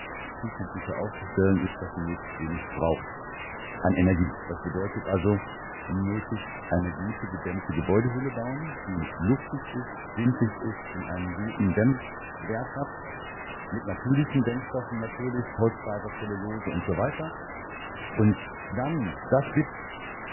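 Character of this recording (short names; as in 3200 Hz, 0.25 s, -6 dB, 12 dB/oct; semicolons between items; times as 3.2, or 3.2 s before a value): chopped level 0.78 Hz, depth 60%, duty 30%; a quantiser's noise floor 6-bit, dither triangular; MP3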